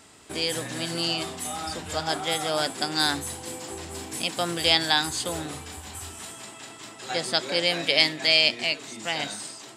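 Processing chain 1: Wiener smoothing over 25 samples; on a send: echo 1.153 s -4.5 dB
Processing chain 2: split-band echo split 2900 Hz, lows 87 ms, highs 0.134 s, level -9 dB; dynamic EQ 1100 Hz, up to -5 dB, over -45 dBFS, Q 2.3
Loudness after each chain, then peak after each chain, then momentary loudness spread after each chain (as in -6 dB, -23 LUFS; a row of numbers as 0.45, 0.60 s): -26.0, -24.5 LUFS; -4.0, -3.0 dBFS; 14, 17 LU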